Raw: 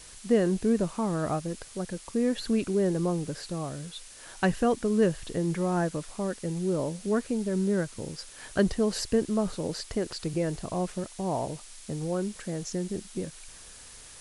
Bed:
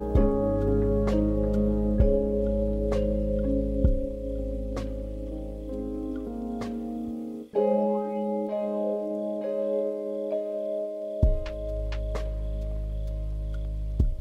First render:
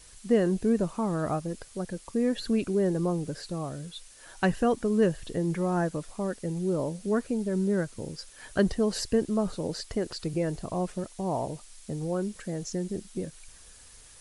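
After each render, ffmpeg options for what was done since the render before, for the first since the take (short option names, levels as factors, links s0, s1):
-af "afftdn=nr=6:nf=-48"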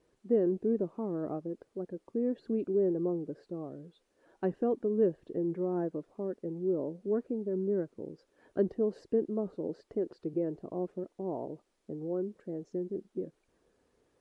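-af "bandpass=f=360:t=q:w=2:csg=0"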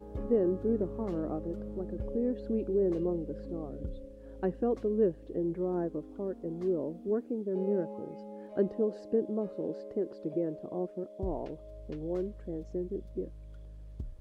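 -filter_complex "[1:a]volume=0.15[s0];[0:a][s0]amix=inputs=2:normalize=0"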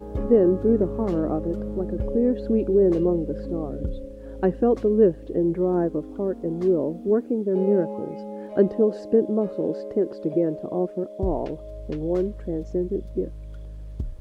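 -af "volume=3.16"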